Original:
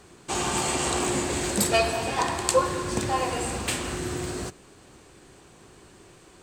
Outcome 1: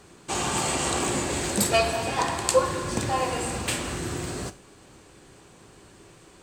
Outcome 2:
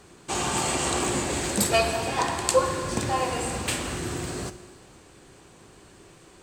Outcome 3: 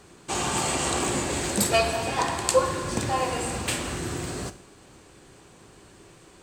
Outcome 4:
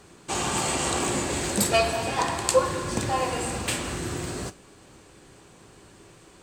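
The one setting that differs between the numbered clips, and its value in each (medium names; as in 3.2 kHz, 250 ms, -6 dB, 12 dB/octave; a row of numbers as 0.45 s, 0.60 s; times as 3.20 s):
gated-style reverb, gate: 130 ms, 530 ms, 220 ms, 80 ms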